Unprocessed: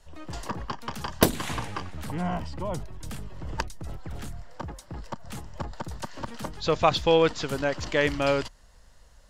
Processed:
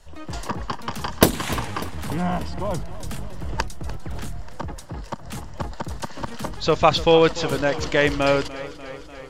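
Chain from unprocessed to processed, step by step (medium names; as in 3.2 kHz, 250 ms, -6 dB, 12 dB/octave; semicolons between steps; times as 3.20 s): hard clipper -6.5 dBFS, distortion -45 dB; modulated delay 296 ms, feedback 68%, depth 60 cents, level -16 dB; trim +5 dB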